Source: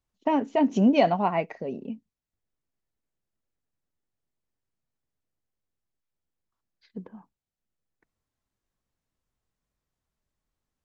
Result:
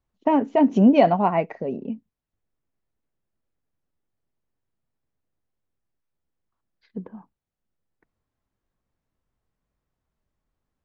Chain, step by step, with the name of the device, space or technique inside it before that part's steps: through cloth (treble shelf 3.2 kHz -13 dB); trim +5 dB

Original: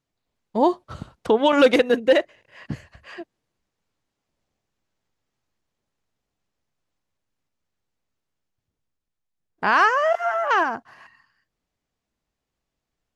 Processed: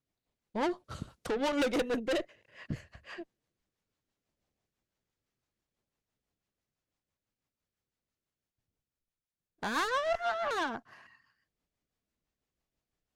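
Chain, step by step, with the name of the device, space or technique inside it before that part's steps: 0.84–1.30 s: treble shelf 5.1 kHz +10.5 dB; overdriven rotary cabinet (valve stage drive 23 dB, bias 0.4; rotary cabinet horn 6 Hz); trim -2.5 dB

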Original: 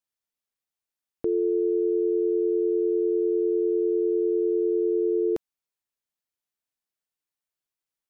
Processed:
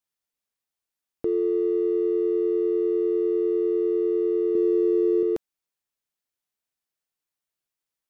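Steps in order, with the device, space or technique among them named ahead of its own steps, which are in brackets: 4.55–5.23 s: tone controls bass +13 dB, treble +13 dB; parallel distortion (in parallel at -13.5 dB: hard clipper -33 dBFS, distortion -6 dB)

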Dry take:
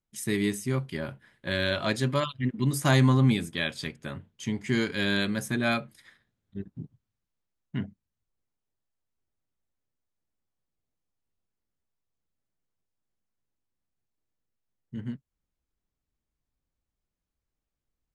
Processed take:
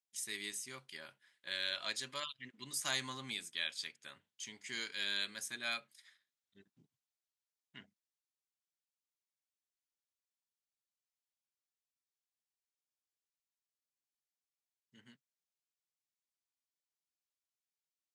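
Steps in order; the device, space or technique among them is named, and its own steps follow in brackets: piezo pickup straight into a mixer (low-pass 6.6 kHz 12 dB/octave; differentiator); trim +1.5 dB

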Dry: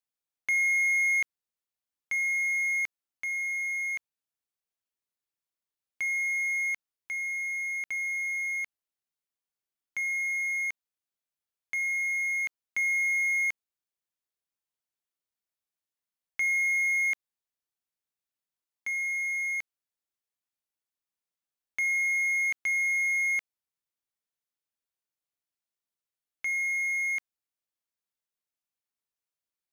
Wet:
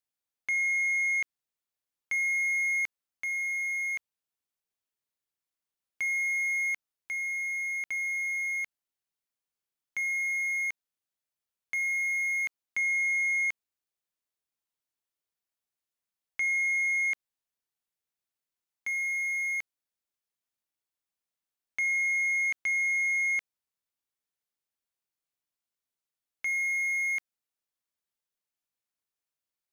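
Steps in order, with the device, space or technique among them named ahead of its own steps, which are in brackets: limiter into clipper (peak limiter -22.5 dBFS, peak gain reduction 2.5 dB; hard clipper -23.5 dBFS, distortion -32 dB)

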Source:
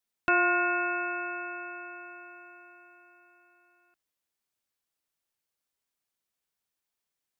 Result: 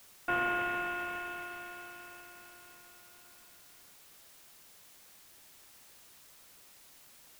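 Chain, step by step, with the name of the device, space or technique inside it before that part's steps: army field radio (band-pass 320–2800 Hz; CVSD coder 16 kbps; white noise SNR 16 dB); trim -5 dB

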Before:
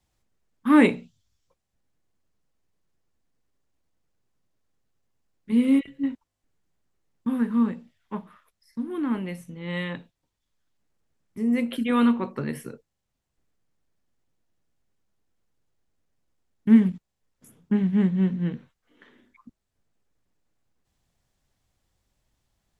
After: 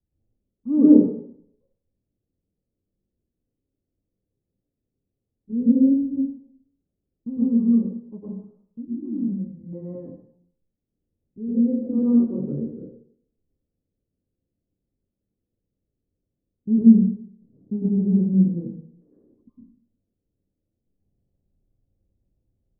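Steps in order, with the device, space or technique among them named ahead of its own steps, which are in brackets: next room (low-pass 470 Hz 24 dB/octave; reverberation RT60 0.65 s, pre-delay 100 ms, DRR -8.5 dB); 8.85–9.73 s: high-order bell 700 Hz -12.5 dB 2.5 oct; trim -5 dB

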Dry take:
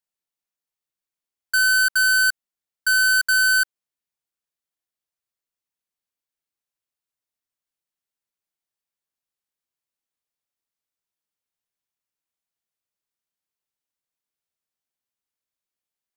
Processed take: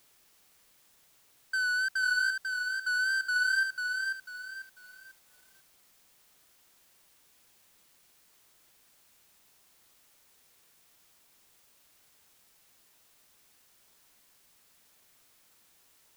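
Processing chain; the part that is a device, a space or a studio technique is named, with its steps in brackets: tape answering machine (band-pass 320–3200 Hz; saturation -21 dBFS, distortion -17 dB; wow and flutter; white noise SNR 25 dB); bit-crushed delay 494 ms, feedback 35%, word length 9-bit, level -4 dB; trim -6 dB

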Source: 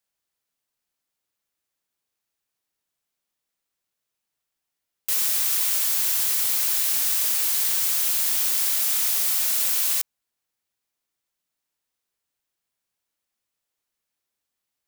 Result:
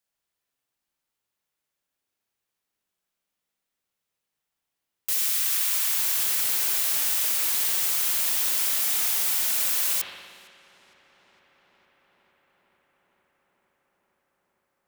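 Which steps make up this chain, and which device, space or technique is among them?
5.12–5.97 s: high-pass 1.5 kHz -> 640 Hz 12 dB/octave; dub delay into a spring reverb (filtered feedback delay 459 ms, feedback 84%, low-pass 3.7 kHz, level -21 dB; spring tank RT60 1.6 s, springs 58 ms, chirp 75 ms, DRR 0 dB); trim -2 dB

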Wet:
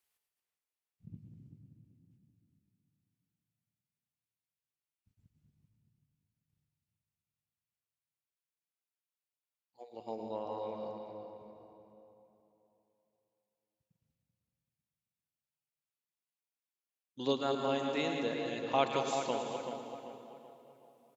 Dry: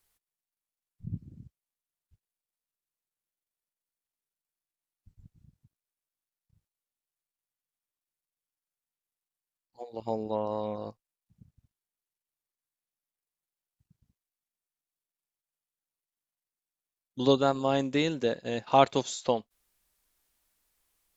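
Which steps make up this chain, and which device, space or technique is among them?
chunks repeated in reverse 134 ms, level -7.5 dB; tape echo 385 ms, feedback 45%, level -6.5 dB, low-pass 2.9 kHz; PA in a hall (high-pass 190 Hz 6 dB/octave; peaking EQ 2.6 kHz +4.5 dB 0.68 oct; delay 110 ms -11.5 dB; reverberation RT60 2.6 s, pre-delay 101 ms, DRR 7.5 dB); trim -8.5 dB

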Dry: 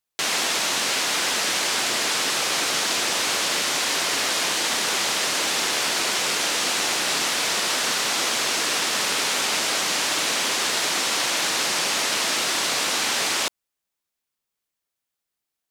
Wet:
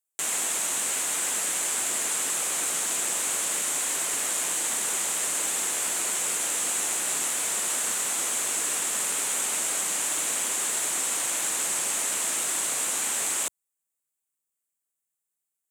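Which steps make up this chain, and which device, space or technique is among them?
budget condenser microphone (high-pass 90 Hz; resonant high shelf 6.3 kHz +8 dB, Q 3); trim -9 dB

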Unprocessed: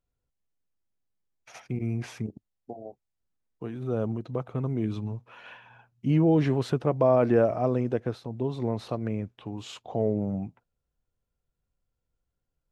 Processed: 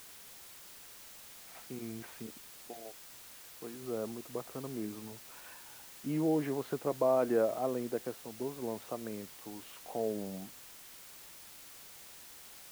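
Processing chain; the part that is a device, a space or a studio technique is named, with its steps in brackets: wax cylinder (band-pass 260–2200 Hz; wow and flutter; white noise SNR 14 dB); trim -6.5 dB

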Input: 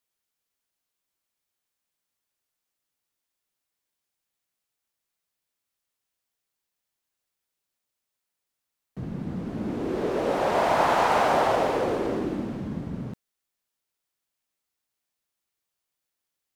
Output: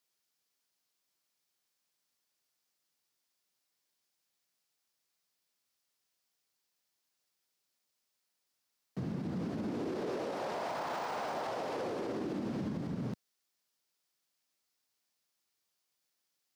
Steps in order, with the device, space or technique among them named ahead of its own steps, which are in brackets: broadcast voice chain (high-pass 110 Hz 12 dB/octave; de-esser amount 85%; compression, threshold -28 dBFS, peak gain reduction 10 dB; peaking EQ 5 kHz +6 dB 0.73 oct; peak limiter -29.5 dBFS, peak gain reduction 9 dB)

